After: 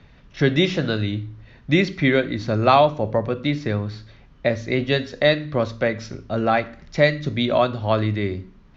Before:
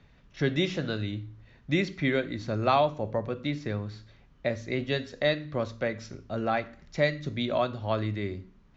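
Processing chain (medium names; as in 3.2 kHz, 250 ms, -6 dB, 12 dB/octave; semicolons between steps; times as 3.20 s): low-pass 6.4 kHz 24 dB/octave; trim +8.5 dB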